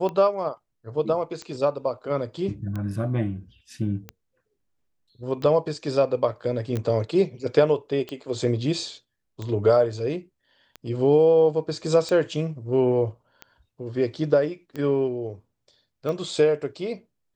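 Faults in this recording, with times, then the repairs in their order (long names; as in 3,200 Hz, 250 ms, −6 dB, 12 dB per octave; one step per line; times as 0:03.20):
scratch tick 45 rpm −20 dBFS
0:06.77: click −16 dBFS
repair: click removal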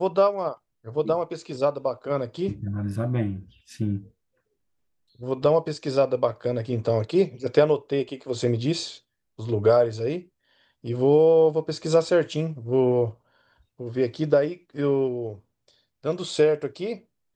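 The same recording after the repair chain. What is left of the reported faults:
none of them is left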